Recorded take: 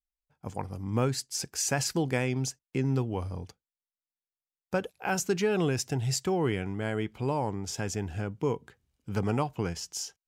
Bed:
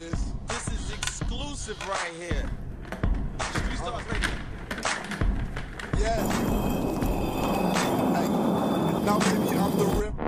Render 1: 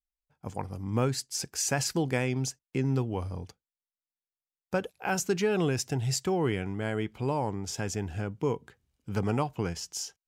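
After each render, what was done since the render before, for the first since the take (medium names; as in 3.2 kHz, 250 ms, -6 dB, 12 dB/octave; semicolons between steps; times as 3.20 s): no audible change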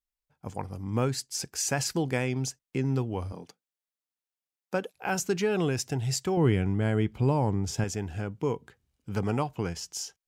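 3.32–4.95 s: high-pass 170 Hz 24 dB/octave; 6.37–7.84 s: bass shelf 270 Hz +10 dB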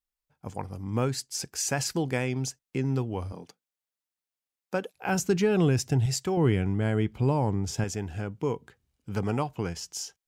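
5.08–6.06 s: bass shelf 250 Hz +9 dB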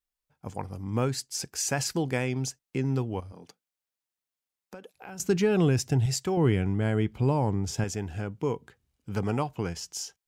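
3.20–5.20 s: compression 4:1, threshold -42 dBFS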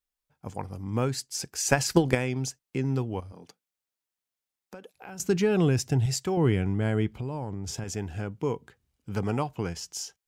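1.65–2.15 s: transient shaper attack +12 dB, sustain +6 dB; 7.09–7.88 s: compression 12:1, threshold -29 dBFS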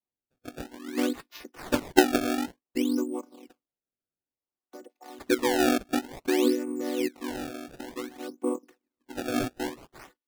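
vocoder on a held chord minor triad, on B3; decimation with a swept rate 25×, swing 160% 0.56 Hz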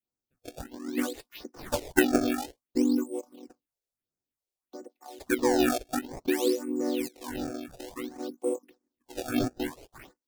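phase shifter stages 4, 1.5 Hz, lowest notch 190–3300 Hz; in parallel at -11.5 dB: saturation -24 dBFS, distortion -10 dB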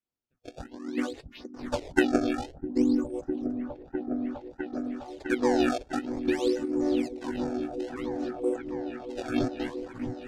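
distance through air 97 m; delay with an opening low-pass 655 ms, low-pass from 200 Hz, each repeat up 1 oct, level -3 dB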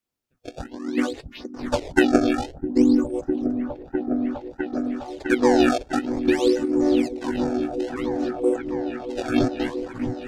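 trim +7 dB; peak limiter -3 dBFS, peak gain reduction 2.5 dB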